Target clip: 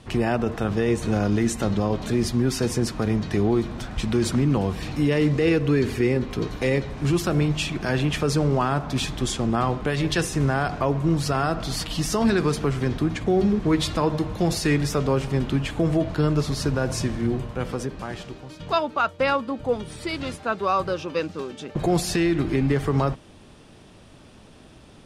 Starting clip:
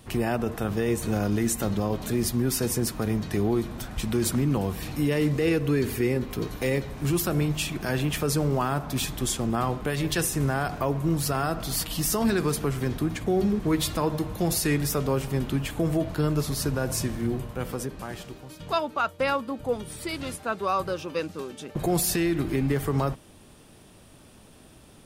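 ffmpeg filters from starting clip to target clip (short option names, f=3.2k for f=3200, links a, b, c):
-af "lowpass=6.1k,volume=3.5dB"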